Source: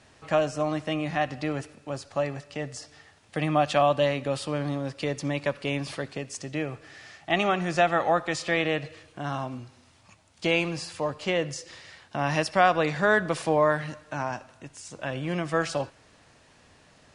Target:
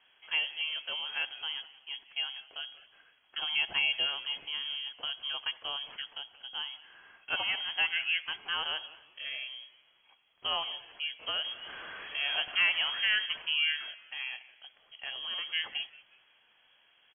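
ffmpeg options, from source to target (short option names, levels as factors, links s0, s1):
-filter_complex "[0:a]asettb=1/sr,asplit=3[s0][s1][s2];[s0]atrim=end=11.444[s3];[s1]atrim=start=11.44:end=13.26,asetpts=PTS-STARTPTS,afade=t=in:d=0.004:c=qsin,afade=t=out:st=1.816:d=0.004:c=qsin,aeval=exprs='val(0)+0.5*0.0355*sgn(val(0))':c=same[s4];[s2]atrim=start=13.256[s5];[s3][s4]acrossfade=d=0.004:c1=hsin:c2=qsin[s6];[s6][s5]acrossfade=d=0.004:c1=qsin:c2=hsin,lowpass=f=2900:t=q:w=0.5098,lowpass=f=2900:t=q:w=0.6013,lowpass=f=2900:t=q:w=0.9,lowpass=f=2900:t=q:w=2.563,afreqshift=-3400,asplit=4[s7][s8][s9][s10];[s8]adelay=181,afreqshift=-130,volume=0.1[s11];[s9]adelay=362,afreqshift=-260,volume=0.032[s12];[s10]adelay=543,afreqshift=-390,volume=0.0102[s13];[s7][s11][s12][s13]amix=inputs=4:normalize=0,volume=0.398"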